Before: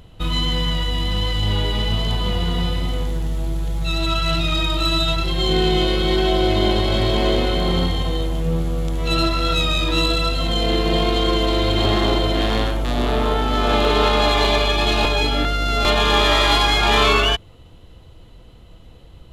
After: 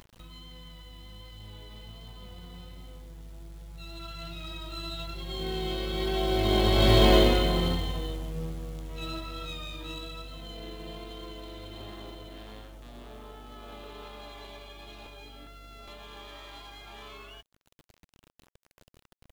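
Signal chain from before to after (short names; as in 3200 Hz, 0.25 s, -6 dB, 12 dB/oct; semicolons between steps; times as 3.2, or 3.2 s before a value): Doppler pass-by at 7.04, 6 m/s, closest 1.6 m; companded quantiser 6-bit; upward compressor, threshold -42 dBFS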